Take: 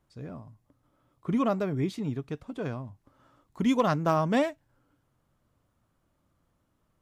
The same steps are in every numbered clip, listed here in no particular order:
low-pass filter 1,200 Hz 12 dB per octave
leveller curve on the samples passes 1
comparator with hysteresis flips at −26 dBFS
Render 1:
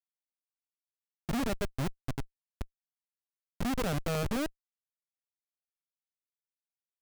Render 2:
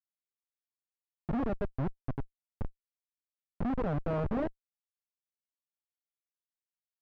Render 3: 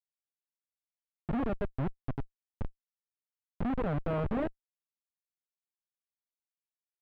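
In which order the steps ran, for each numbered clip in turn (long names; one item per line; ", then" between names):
low-pass filter, then comparator with hysteresis, then leveller curve on the samples
comparator with hysteresis, then leveller curve on the samples, then low-pass filter
comparator with hysteresis, then low-pass filter, then leveller curve on the samples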